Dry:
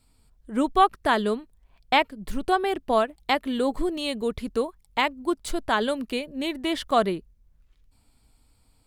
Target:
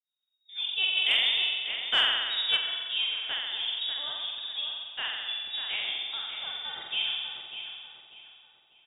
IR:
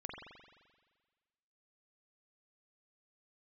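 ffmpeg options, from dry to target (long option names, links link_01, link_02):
-filter_complex "[0:a]agate=range=-33dB:threshold=-49dB:ratio=3:detection=peak[link_01];[1:a]atrim=start_sample=2205,asetrate=43218,aresample=44100[link_02];[link_01][link_02]afir=irnorm=-1:irlink=0,lowpass=frequency=3200:width_type=q:width=0.5098,lowpass=frequency=3200:width_type=q:width=0.6013,lowpass=frequency=3200:width_type=q:width=0.9,lowpass=frequency=3200:width_type=q:width=2.563,afreqshift=-3800,asplit=2[link_03][link_04];[link_04]adelay=593,lowpass=frequency=3000:poles=1,volume=-7dB,asplit=2[link_05][link_06];[link_06]adelay=593,lowpass=frequency=3000:poles=1,volume=0.39,asplit=2[link_07][link_08];[link_08]adelay=593,lowpass=frequency=3000:poles=1,volume=0.39,asplit=2[link_09][link_10];[link_10]adelay=593,lowpass=frequency=3000:poles=1,volume=0.39,asplit=2[link_11][link_12];[link_12]adelay=593,lowpass=frequency=3000:poles=1,volume=0.39[link_13];[link_03][link_05][link_07][link_09][link_11][link_13]amix=inputs=6:normalize=0,asplit=3[link_14][link_15][link_16];[link_14]afade=type=out:start_time=0.95:duration=0.02[link_17];[link_15]acontrast=55,afade=type=in:start_time=0.95:duration=0.02,afade=type=out:start_time=2.56:duration=0.02[link_18];[link_16]afade=type=in:start_time=2.56:duration=0.02[link_19];[link_17][link_18][link_19]amix=inputs=3:normalize=0,volume=-6.5dB"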